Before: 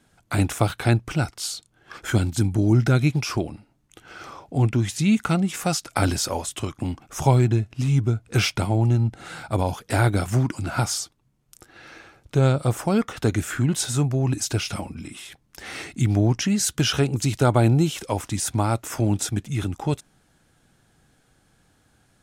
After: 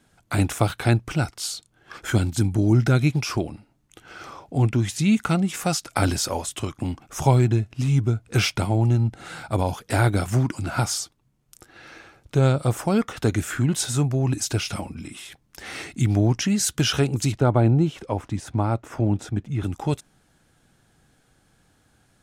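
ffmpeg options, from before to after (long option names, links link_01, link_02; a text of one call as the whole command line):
ffmpeg -i in.wav -filter_complex "[0:a]asplit=3[link_01][link_02][link_03];[link_01]afade=type=out:start_time=17.31:duration=0.02[link_04];[link_02]lowpass=frequency=1200:poles=1,afade=type=in:start_time=17.31:duration=0.02,afade=type=out:start_time=19.63:duration=0.02[link_05];[link_03]afade=type=in:start_time=19.63:duration=0.02[link_06];[link_04][link_05][link_06]amix=inputs=3:normalize=0" out.wav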